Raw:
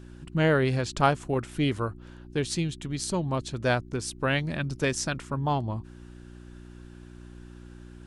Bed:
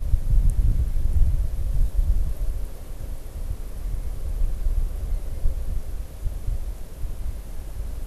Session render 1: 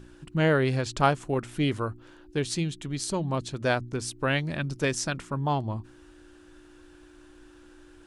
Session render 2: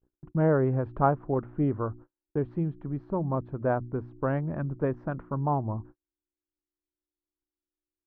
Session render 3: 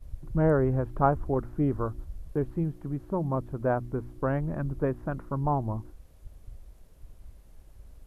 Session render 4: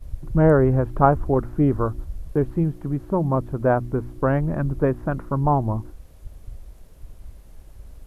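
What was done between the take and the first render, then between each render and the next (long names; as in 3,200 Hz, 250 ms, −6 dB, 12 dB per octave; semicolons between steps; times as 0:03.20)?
hum removal 60 Hz, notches 4
noise gate −44 dBFS, range −45 dB; low-pass filter 1,200 Hz 24 dB per octave
mix in bed −18.5 dB
level +7.5 dB; brickwall limiter −3 dBFS, peak gain reduction 1 dB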